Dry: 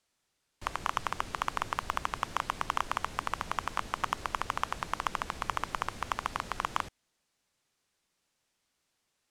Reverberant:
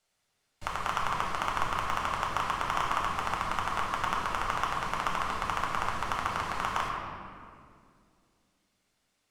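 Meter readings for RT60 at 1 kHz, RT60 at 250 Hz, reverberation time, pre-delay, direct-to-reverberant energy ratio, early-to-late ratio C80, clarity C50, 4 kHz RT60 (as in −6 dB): 2.0 s, 3.2 s, 2.3 s, 7 ms, −2.5 dB, 2.5 dB, 1.0 dB, 1.4 s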